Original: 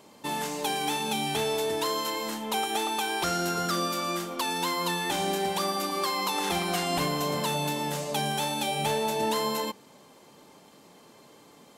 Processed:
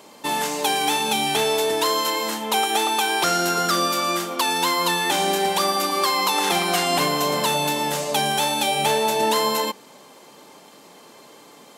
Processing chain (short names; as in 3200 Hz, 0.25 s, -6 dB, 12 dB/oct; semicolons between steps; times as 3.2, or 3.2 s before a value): HPF 330 Hz 6 dB/oct; gain +8.5 dB